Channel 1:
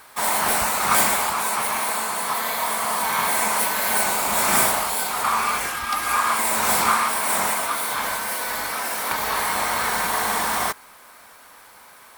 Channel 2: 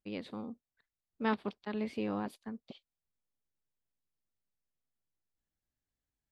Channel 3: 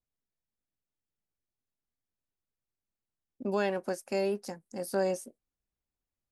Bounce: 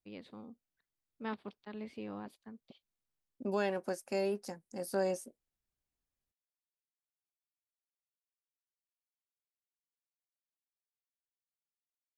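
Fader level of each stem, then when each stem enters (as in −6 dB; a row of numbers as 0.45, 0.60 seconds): muted, −8.0 dB, −3.5 dB; muted, 0.00 s, 0.00 s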